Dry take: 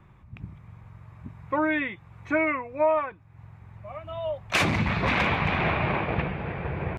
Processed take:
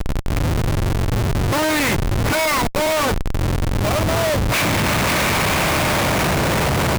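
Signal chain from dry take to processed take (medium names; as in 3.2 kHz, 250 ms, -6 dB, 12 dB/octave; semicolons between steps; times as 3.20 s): spectral levelling over time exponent 0.6; 2.32–2.87 s: high-pass 740 Hz 12 dB/octave; Schmitt trigger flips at -32.5 dBFS; trim +7 dB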